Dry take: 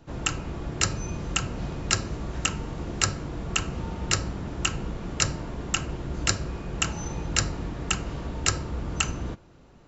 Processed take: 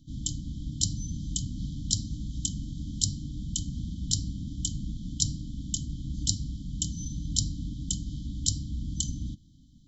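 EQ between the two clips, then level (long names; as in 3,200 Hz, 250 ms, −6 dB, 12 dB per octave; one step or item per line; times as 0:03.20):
linear-phase brick-wall band-stop 310–3,000 Hz
−1.5 dB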